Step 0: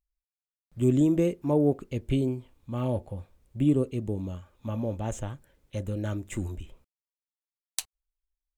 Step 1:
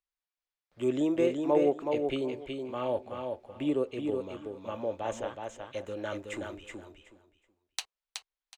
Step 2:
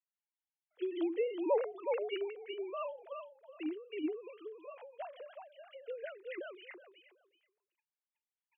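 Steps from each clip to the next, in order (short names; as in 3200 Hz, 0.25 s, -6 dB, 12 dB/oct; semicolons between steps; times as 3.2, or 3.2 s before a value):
three-band isolator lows -22 dB, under 370 Hz, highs -18 dB, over 5400 Hz; on a send: feedback echo 0.372 s, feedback 19%, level -5 dB; on the sum: gain +3 dB
sine-wave speech; tilt +2 dB/oct; ending taper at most 110 dB/s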